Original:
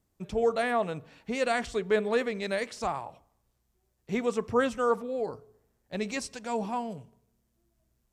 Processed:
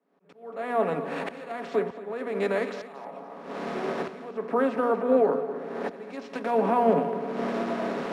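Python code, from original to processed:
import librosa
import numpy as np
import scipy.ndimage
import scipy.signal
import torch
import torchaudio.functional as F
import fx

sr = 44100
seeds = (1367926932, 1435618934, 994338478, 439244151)

p1 = fx.bin_compress(x, sr, power=0.6)
p2 = fx.recorder_agc(p1, sr, target_db=-14.5, rise_db_per_s=45.0, max_gain_db=30)
p3 = scipy.signal.sosfilt(scipy.signal.butter(12, 170.0, 'highpass', fs=sr, output='sos'), p2)
p4 = fx.high_shelf(p3, sr, hz=4700.0, db=-9.0)
p5 = fx.hum_notches(p4, sr, base_hz=60, count=4)
p6 = p5 + 0.39 * np.pad(p5, (int(7.2 * sr / 1000.0), 0))[:len(p5)]
p7 = fx.auto_swell(p6, sr, attack_ms=481.0)
p8 = p7 + fx.echo_feedback(p7, sr, ms=230, feedback_pct=43, wet_db=-10.5, dry=0)
p9 = np.repeat(p8[::4], 4)[:len(p8)]
p10 = fx.spacing_loss(p9, sr, db_at_10k=24)
y = fx.band_widen(p10, sr, depth_pct=70)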